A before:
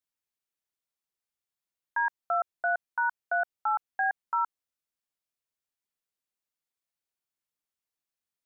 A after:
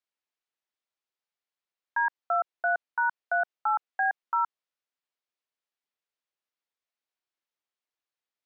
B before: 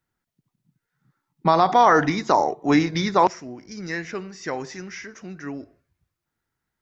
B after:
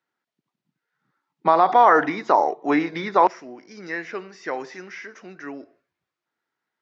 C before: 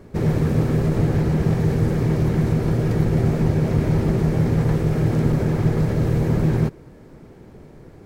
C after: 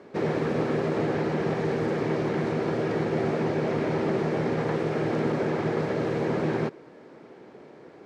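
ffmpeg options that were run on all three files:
-filter_complex "[0:a]highpass=340,lowpass=4500,acrossover=split=2800[link_01][link_02];[link_02]acompressor=threshold=-47dB:ratio=4:attack=1:release=60[link_03];[link_01][link_03]amix=inputs=2:normalize=0,volume=1.5dB"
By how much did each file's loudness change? +1.5, +0.5, −7.0 LU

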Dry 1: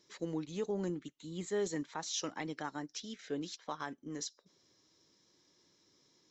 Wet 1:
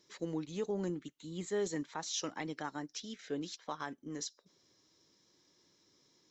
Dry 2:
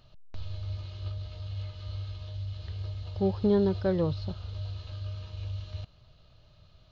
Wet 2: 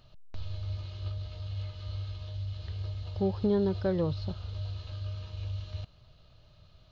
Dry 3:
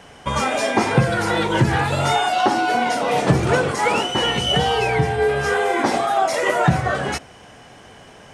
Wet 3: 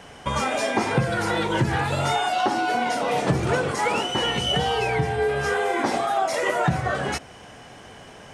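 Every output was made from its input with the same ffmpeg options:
-af "acompressor=threshold=-27dB:ratio=1.5"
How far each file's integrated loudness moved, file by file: 0.0, −1.5, −4.5 LU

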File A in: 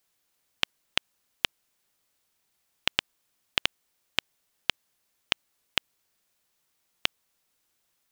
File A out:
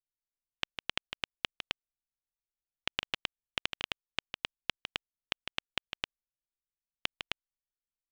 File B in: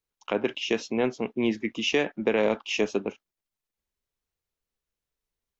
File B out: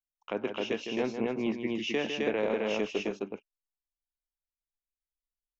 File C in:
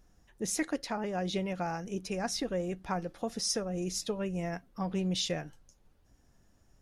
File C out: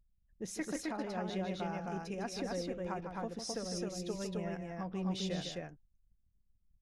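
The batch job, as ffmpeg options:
-filter_complex "[0:a]highshelf=frequency=5100:gain=-8,aresample=32000,aresample=44100,asplit=2[link_01][link_02];[link_02]aecho=0:1:154.5|262.4:0.398|0.794[link_03];[link_01][link_03]amix=inputs=2:normalize=0,anlmdn=0.00158,volume=-6.5dB"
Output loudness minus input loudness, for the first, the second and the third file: −7.5, −5.0, −5.0 LU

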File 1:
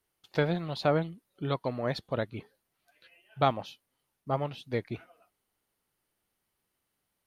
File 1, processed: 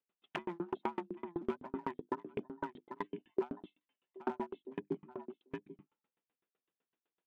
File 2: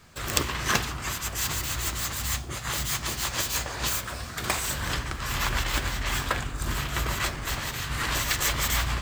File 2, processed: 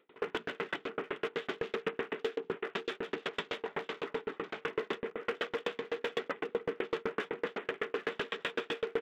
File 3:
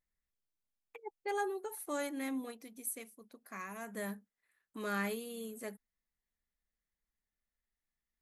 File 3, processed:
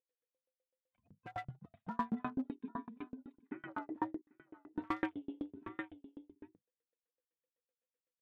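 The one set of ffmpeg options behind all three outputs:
-filter_complex "[0:a]afftfilt=real='real(if(between(b,1,1008),(2*floor((b-1)/24)+1)*24-b,b),0)':imag='imag(if(between(b,1,1008),(2*floor((b-1)/24)+1)*24-b,b),0)*if(between(b,1,1008),-1,1)':win_size=2048:overlap=0.75,aresample=8000,aresample=44100,lowshelf=frequency=270:gain=9,bandreject=frequency=50:width_type=h:width=6,bandreject=frequency=100:width_type=h:width=6,bandreject=frequency=150:width_type=h:width=6,bandreject=frequency=200:width_type=h:width=6,bandreject=frequency=250:width_type=h:width=6,bandreject=frequency=300:width_type=h:width=6,bandreject=frequency=350:width_type=h:width=6,afwtdn=0.0112,acontrast=55,asplit=2[link_01][link_02];[link_02]aecho=0:1:790:0.158[link_03];[link_01][link_03]amix=inputs=2:normalize=0,acompressor=threshold=-36dB:ratio=3,alimiter=level_in=4dB:limit=-24dB:level=0:latency=1:release=200,volume=-4dB,asoftclip=type=hard:threshold=-31dB,highpass=frequency=200:width=0.5412,highpass=frequency=200:width=1.3066,aeval=exprs='val(0)*pow(10,-38*if(lt(mod(7.9*n/s,1),2*abs(7.9)/1000),1-mod(7.9*n/s,1)/(2*abs(7.9)/1000),(mod(7.9*n/s,1)-2*abs(7.9)/1000)/(1-2*abs(7.9)/1000))/20)':channel_layout=same,volume=10dB"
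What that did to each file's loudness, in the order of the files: −10.5, −9.5, −3.0 LU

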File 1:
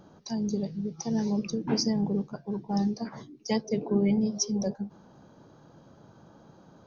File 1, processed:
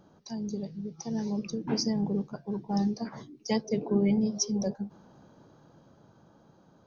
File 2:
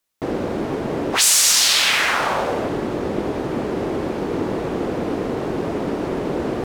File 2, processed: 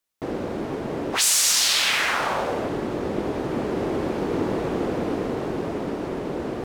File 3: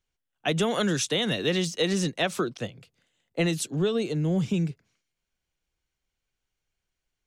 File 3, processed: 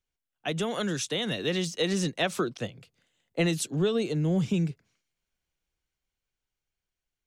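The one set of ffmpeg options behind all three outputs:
-af "dynaudnorm=framelen=260:gausssize=13:maxgain=4.5dB,volume=-5dB"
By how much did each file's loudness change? −1.5, −4.0, −2.0 LU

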